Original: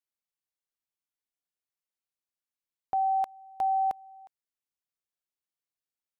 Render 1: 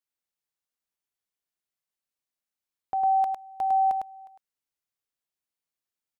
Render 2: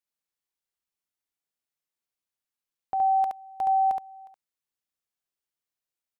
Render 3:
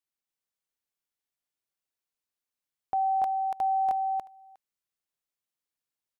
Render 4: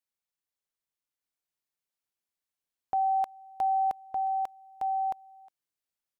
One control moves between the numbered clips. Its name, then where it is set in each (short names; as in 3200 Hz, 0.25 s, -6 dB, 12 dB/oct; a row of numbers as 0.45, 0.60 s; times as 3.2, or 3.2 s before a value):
echo, time: 104, 70, 286, 1212 ms